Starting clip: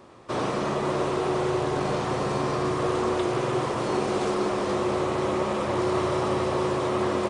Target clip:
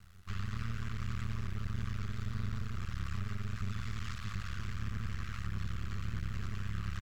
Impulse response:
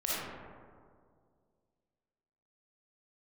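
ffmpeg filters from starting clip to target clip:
-af "afftfilt=real='re*(1-between(b*sr/4096,140,1400))':imag='im*(1-between(b*sr/4096,140,1400))':win_size=4096:overlap=0.75,tiltshelf=frequency=970:gain=7.5,alimiter=level_in=3.5dB:limit=-24dB:level=0:latency=1:release=82,volume=-3.5dB,aeval=exprs='max(val(0),0)':channel_layout=same,atempo=1.3,acrusher=bits=8:dc=4:mix=0:aa=0.000001,asetrate=35280,aresample=44100,aphaser=in_gain=1:out_gain=1:delay=3.2:decay=0.2:speed=1.6:type=triangular,volume=1dB"

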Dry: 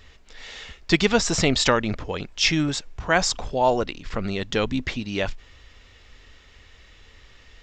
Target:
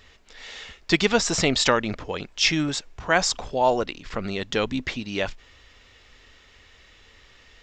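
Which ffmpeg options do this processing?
ffmpeg -i in.wav -af "lowshelf=frequency=150:gain=-7" out.wav

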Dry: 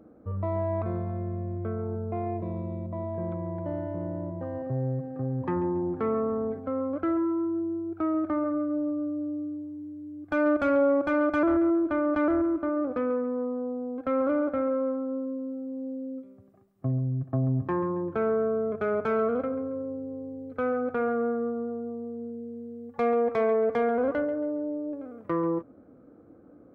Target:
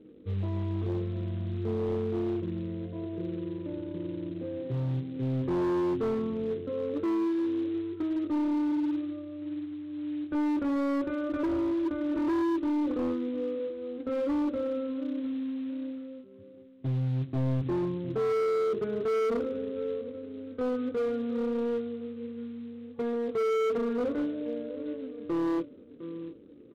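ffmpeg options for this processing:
ffmpeg -i in.wav -filter_complex "[0:a]lowpass=2600,lowshelf=frequency=550:width_type=q:width=3:gain=8.5,asplit=2[link_01][link_02];[link_02]aecho=0:1:708|1416|2124:0.2|0.0519|0.0135[link_03];[link_01][link_03]amix=inputs=2:normalize=0,flanger=delay=20:depth=5.1:speed=0.13,aresample=8000,acrusher=bits=6:mode=log:mix=0:aa=0.000001,aresample=44100,volume=18dB,asoftclip=hard,volume=-18dB,volume=-7.5dB" out.wav

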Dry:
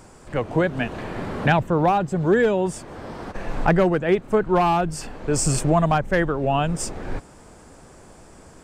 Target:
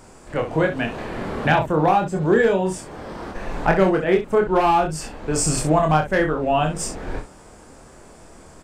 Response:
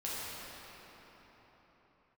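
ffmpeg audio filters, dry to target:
-af "equalizer=frequency=120:width_type=o:width=1.3:gain=-3.5,aecho=1:1:26|64:0.668|0.355"

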